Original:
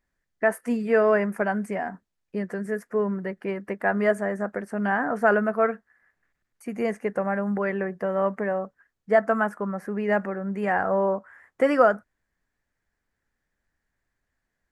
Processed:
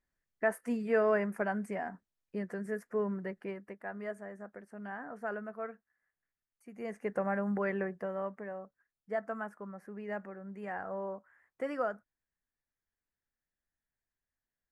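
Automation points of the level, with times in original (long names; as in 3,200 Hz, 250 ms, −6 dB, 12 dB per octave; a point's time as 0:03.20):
0:03.37 −8 dB
0:03.83 −18 dB
0:06.71 −18 dB
0:07.13 −6.5 dB
0:07.83 −6.5 dB
0:08.37 −15.5 dB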